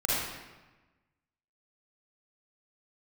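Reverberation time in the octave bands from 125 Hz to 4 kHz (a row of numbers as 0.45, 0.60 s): 1.4, 1.3, 1.2, 1.2, 1.1, 0.90 s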